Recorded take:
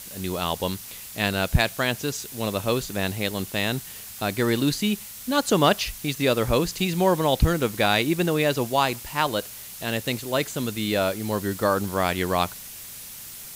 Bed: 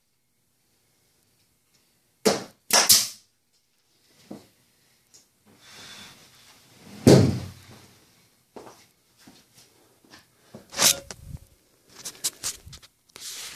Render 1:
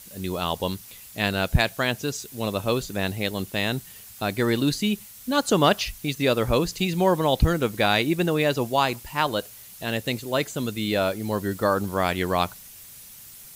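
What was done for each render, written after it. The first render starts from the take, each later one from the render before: denoiser 7 dB, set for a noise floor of -40 dBFS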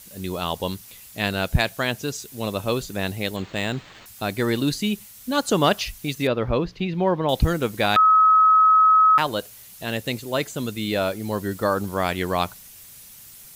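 3.36–4.06 decimation joined by straight lines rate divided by 4×; 6.27–7.29 air absorption 290 m; 7.96–9.18 bleep 1280 Hz -11.5 dBFS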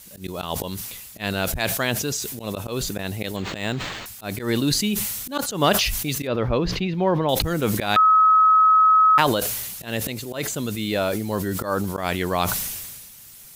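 auto swell 0.113 s; sustainer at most 35 dB/s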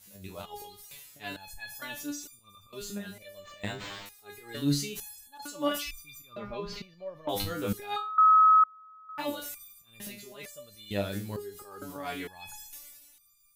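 stepped resonator 2.2 Hz 100–1200 Hz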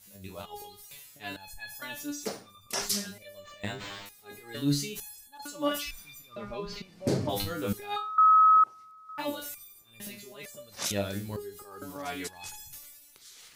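add bed -14.5 dB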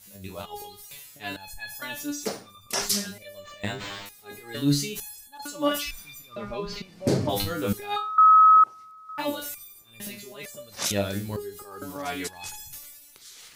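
gain +4.5 dB

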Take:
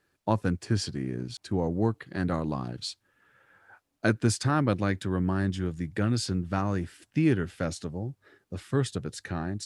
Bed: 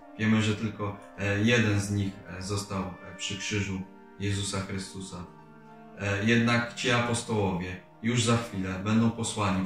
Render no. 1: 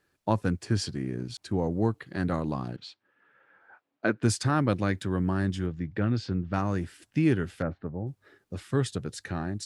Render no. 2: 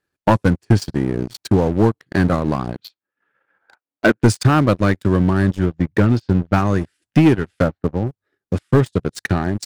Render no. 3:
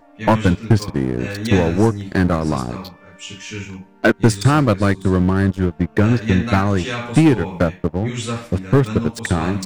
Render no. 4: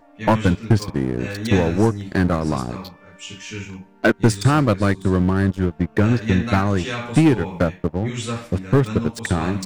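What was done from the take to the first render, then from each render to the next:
2.76–4.23 BPF 220–2700 Hz; 5.66–6.54 air absorption 210 m; 7.62–8.07 LPF 1700 Hz 24 dB/oct
transient shaper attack +7 dB, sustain -10 dB; sample leveller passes 3
add bed 0 dB
gain -2 dB

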